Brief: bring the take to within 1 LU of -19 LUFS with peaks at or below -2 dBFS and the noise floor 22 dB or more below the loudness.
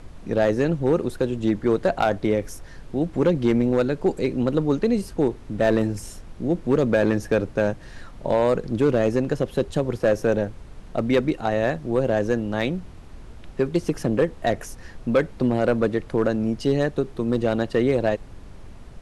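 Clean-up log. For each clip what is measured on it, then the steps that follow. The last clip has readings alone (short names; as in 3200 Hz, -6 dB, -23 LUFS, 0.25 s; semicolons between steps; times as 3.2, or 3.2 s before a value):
clipped 0.6%; flat tops at -11.5 dBFS; noise floor -42 dBFS; noise floor target -45 dBFS; loudness -23.0 LUFS; peak -11.5 dBFS; loudness target -19.0 LUFS
-> clip repair -11.5 dBFS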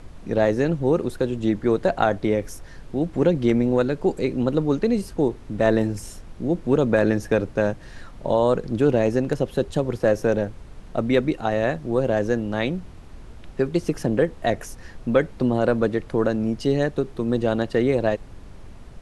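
clipped 0.0%; noise floor -42 dBFS; noise floor target -45 dBFS
-> noise print and reduce 6 dB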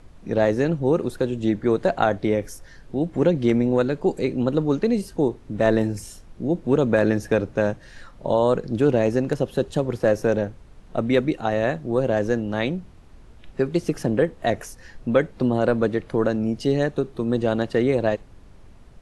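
noise floor -47 dBFS; loudness -23.0 LUFS; peak -4.5 dBFS; loudness target -19.0 LUFS
-> gain +4 dB; limiter -2 dBFS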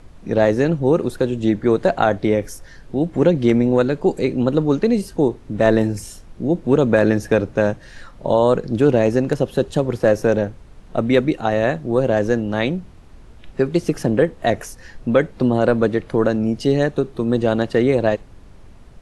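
loudness -19.0 LUFS; peak -2.0 dBFS; noise floor -43 dBFS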